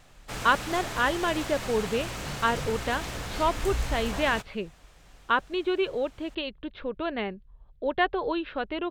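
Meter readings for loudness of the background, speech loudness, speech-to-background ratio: -34.5 LUFS, -29.0 LUFS, 5.5 dB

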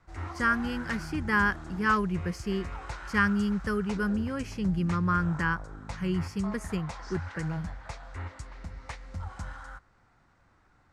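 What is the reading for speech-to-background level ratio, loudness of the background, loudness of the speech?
11.0 dB, -40.5 LUFS, -29.5 LUFS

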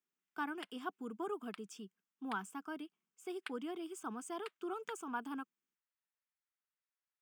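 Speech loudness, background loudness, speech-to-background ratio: -44.5 LUFS, -55.0 LUFS, 10.5 dB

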